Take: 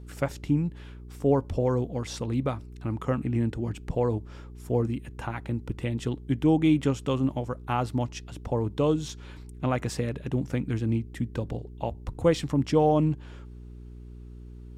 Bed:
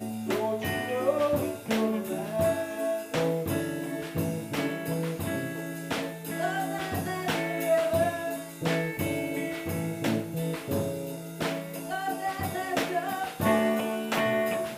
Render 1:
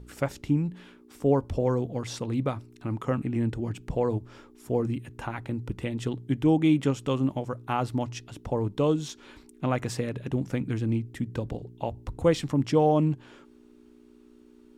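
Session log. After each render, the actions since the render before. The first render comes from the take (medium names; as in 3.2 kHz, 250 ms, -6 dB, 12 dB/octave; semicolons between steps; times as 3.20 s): de-hum 60 Hz, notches 3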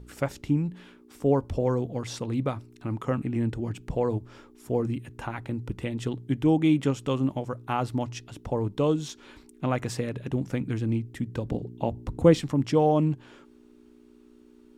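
11.49–12.40 s: peaking EQ 230 Hz +8 dB 1.9 oct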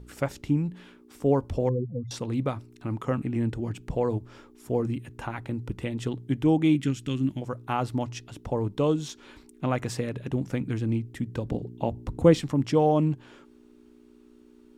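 1.69–2.11 s: spectral contrast enhancement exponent 3.5; 6.75–7.42 s: high-order bell 730 Hz -14.5 dB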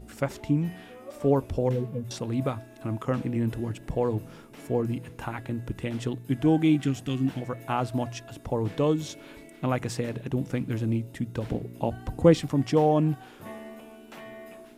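add bed -17.5 dB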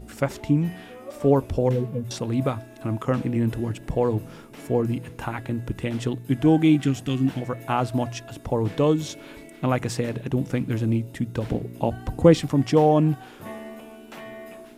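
trim +4 dB; peak limiter -3 dBFS, peak gain reduction 1 dB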